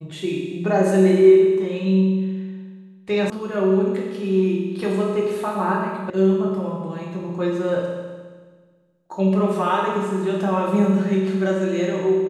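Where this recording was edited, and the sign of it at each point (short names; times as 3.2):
3.3 sound cut off
6.1 sound cut off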